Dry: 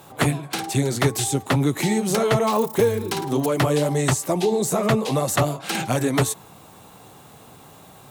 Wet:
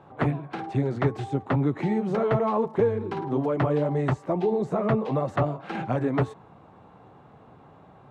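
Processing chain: LPF 1500 Hz 12 dB/oct; gain -3.5 dB

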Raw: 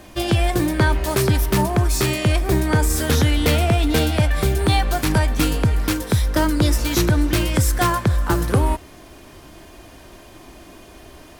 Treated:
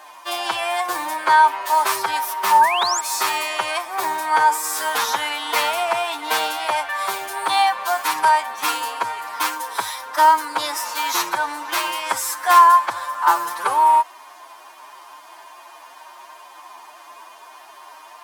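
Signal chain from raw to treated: time stretch by phase-locked vocoder 1.6×; resonant high-pass 950 Hz, resonance Q 4.9; painted sound rise, 2.61–3.01, 1500–8000 Hz -24 dBFS

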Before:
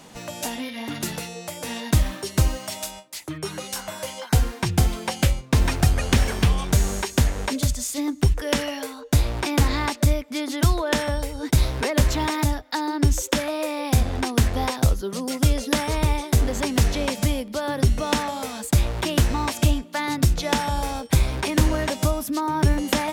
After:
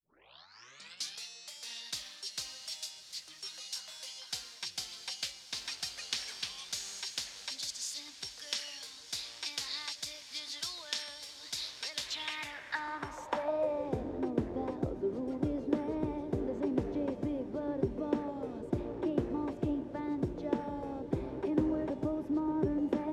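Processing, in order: tape start at the beginning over 1.24 s; diffused feedback echo 0.72 s, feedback 75%, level -13.5 dB; band-pass sweep 4600 Hz -> 360 Hz, 11.92–14.08; gain -2.5 dB

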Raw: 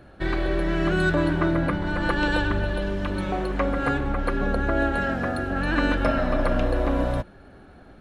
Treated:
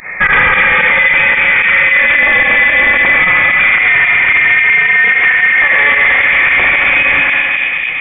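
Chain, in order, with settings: steep high-pass 1000 Hz 96 dB/oct; reverse; compressor, threshold -34 dBFS, peak gain reduction 11 dB; reverse; spring tank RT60 1.7 s, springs 36 ms, chirp 50 ms, DRR 0 dB; pump 111 bpm, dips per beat 2, -18 dB, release 68 ms; soft clip -37 dBFS, distortion -9 dB; analogue delay 0.219 s, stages 2048, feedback 81%, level -4.5 dB; inverted band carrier 3500 Hz; maximiser +34.5 dB; gain -1 dB

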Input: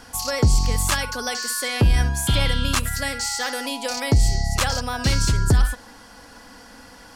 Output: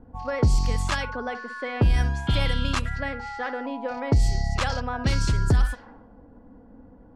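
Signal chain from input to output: low-pass opened by the level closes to 350 Hz, open at -14.5 dBFS; LPF 3200 Hz 6 dB/oct; in parallel at -2.5 dB: compressor, threshold -30 dBFS, peak gain reduction 16 dB; on the sum: gain -4 dB

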